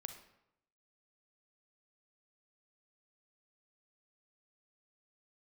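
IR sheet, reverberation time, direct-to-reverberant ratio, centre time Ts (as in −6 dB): 0.80 s, 7.0 dB, 16 ms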